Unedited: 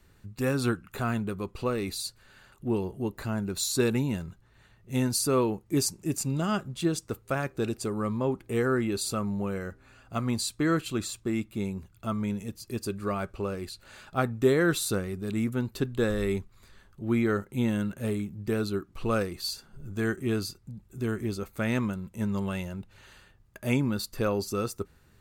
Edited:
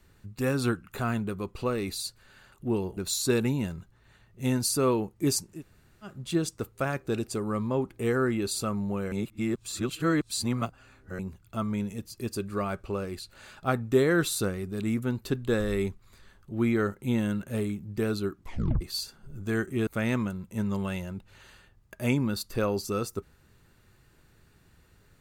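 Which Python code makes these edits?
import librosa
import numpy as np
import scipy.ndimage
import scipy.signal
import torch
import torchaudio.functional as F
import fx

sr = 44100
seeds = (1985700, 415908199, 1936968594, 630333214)

y = fx.edit(x, sr, fx.cut(start_s=2.97, length_s=0.5),
    fx.room_tone_fill(start_s=6.03, length_s=0.6, crossfade_s=0.24),
    fx.reverse_span(start_s=9.62, length_s=2.07),
    fx.tape_stop(start_s=18.92, length_s=0.39),
    fx.cut(start_s=20.37, length_s=1.13), tone=tone)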